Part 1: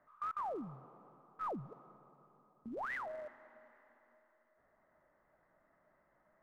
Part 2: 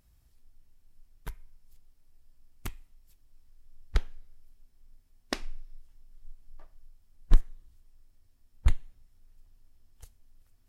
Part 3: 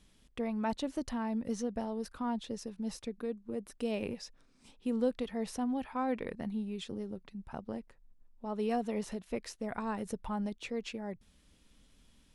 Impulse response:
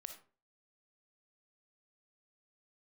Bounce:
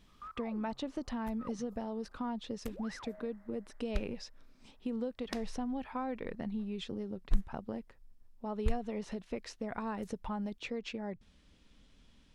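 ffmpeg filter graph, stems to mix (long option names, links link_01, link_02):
-filter_complex "[0:a]volume=-7.5dB[link_01];[1:a]volume=-9dB[link_02];[2:a]volume=1.5dB[link_03];[link_01][link_03]amix=inputs=2:normalize=0,lowpass=5500,acompressor=threshold=-34dB:ratio=5,volume=0dB[link_04];[link_02][link_04]amix=inputs=2:normalize=0"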